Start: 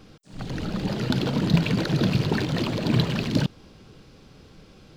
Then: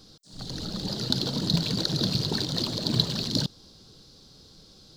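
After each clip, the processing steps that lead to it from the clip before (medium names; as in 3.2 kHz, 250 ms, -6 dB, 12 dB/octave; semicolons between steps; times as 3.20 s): resonant high shelf 3.2 kHz +9 dB, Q 3; trim -6 dB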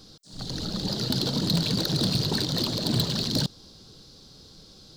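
hard clipper -21 dBFS, distortion -11 dB; trim +2.5 dB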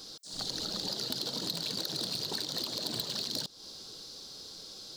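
tone controls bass -14 dB, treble +5 dB; compression 6:1, threshold -35 dBFS, peak gain reduction 14 dB; trim +2.5 dB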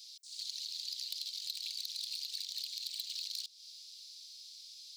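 elliptic high-pass 2.3 kHz, stop band 50 dB; trim -4.5 dB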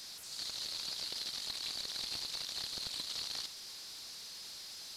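one-bit delta coder 64 kbps, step -44 dBFS; trim +2 dB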